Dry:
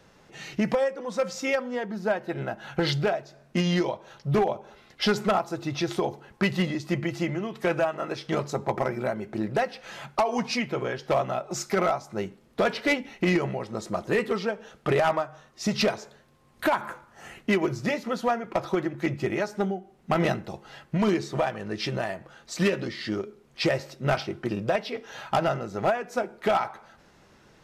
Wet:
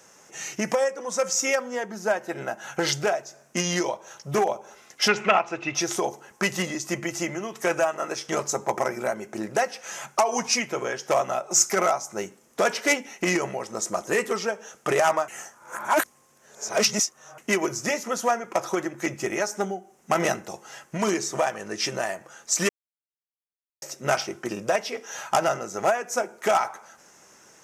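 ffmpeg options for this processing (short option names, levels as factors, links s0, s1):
-filter_complex "[0:a]asettb=1/sr,asplit=3[s0][s1][s2];[s0]atrim=end=5.084[s3];[s1]atrim=start=5.08:end=5.75,asetpts=PTS-STARTPTS,afade=t=in:d=0.004:c=qsin,afade=t=out:st=0.666:d=0.004:c=qsin,lowpass=f=2600:t=q:w=4.7[s4];[s2]atrim=start=5.746[s5];[s3][s4]acrossfade=d=0.004:c1=hsin:c2=qsin[s6];[s6][s5]acrossfade=d=0.004:c1=qsin:c2=hsin,asplit=5[s7][s8][s9][s10][s11];[s7]atrim=end=15.282[s12];[s8]atrim=start=15.278:end=17.382,asetpts=PTS-STARTPTS,areverse[s13];[s9]atrim=start=17.378:end=22.69,asetpts=PTS-STARTPTS,afade=t=out:st=5.308:d=0.004:c=hsin[s14];[s10]atrim=start=22.69:end=23.82,asetpts=PTS-STARTPTS,volume=0[s15];[s11]atrim=start=23.82,asetpts=PTS-STARTPTS,afade=t=in:d=0.004:c=hsin[s16];[s12][s13]acrossfade=d=0.004:c1=hsin:c2=hsin[s17];[s14][s15][s16]concat=n=3:v=0:a=1[s18];[s17][s18]acrossfade=d=0.004:c1=hsin:c2=hsin,highpass=f=560:p=1,highshelf=f=5100:t=q:w=3:g=7,volume=1.68"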